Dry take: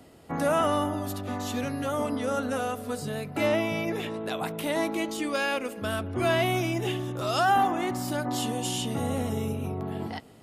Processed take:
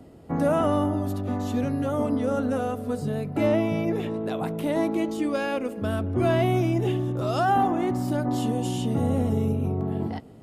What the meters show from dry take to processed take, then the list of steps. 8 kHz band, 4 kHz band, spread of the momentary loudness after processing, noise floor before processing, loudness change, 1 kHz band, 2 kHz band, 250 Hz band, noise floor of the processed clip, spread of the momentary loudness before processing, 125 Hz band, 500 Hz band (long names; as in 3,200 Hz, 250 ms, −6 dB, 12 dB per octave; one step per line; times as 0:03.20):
−7.0 dB, −6.0 dB, 7 LU, −46 dBFS, +3.0 dB, 0.0 dB, −4.5 dB, +5.5 dB, −42 dBFS, 9 LU, +6.5 dB, +3.0 dB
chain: tilt shelving filter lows +7 dB, about 850 Hz